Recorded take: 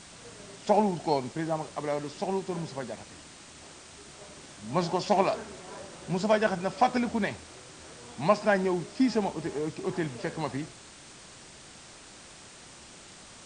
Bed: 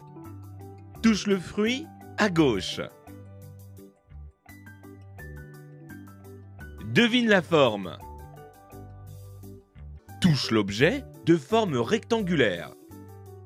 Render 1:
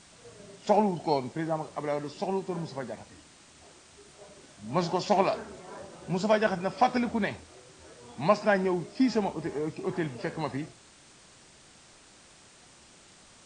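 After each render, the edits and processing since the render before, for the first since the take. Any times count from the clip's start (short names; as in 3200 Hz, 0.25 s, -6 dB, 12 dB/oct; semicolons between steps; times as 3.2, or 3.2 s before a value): noise print and reduce 6 dB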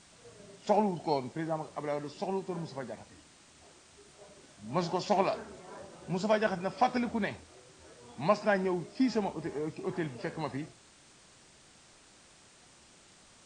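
gain -3.5 dB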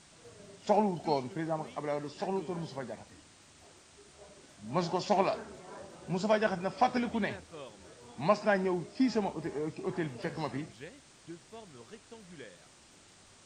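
add bed -26.5 dB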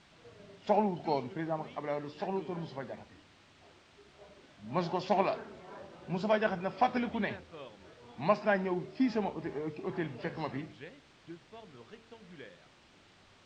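Chebyshev low-pass 3300 Hz, order 2; de-hum 75.27 Hz, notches 7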